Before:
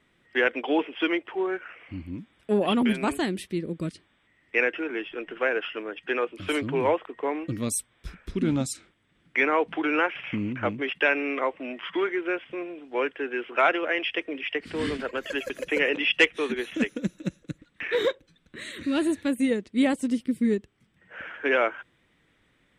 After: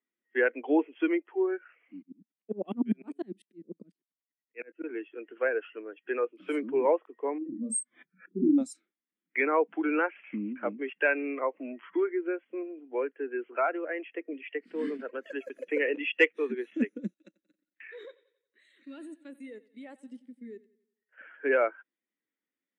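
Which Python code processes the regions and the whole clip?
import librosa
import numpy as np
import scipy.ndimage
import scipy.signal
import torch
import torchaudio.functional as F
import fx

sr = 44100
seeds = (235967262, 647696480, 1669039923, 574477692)

y = fx.chain(x, sr, fx.low_shelf(hz=200.0, db=12.0),
    fx.tremolo_decay(direction='swelling', hz=10.0, depth_db=37), at=(2.02, 4.84))
y = fx.chain(y, sr, fx.spec_expand(power=2.0),
    fx.doubler(ms=32.0, db=-5),
    fx.pre_swell(db_per_s=130.0), at=(7.38, 8.58))
y = fx.chain(y, sr, fx.air_absorb(metres=330.0),
    fx.band_squash(depth_pct=40), at=(11.54, 14.33))
y = fx.chain(y, sr, fx.highpass(hz=760.0, slope=6),
    fx.level_steps(step_db=12),
    fx.echo_feedback(ms=90, feedback_pct=59, wet_db=-14.0), at=(17.14, 21.18))
y = scipy.signal.sosfilt(scipy.signal.butter(6, 200.0, 'highpass', fs=sr, output='sos'), y)
y = fx.dynamic_eq(y, sr, hz=3300.0, q=2.2, threshold_db=-45.0, ratio=4.0, max_db=-6)
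y = fx.spectral_expand(y, sr, expansion=1.5)
y = y * 10.0 ** (-1.5 / 20.0)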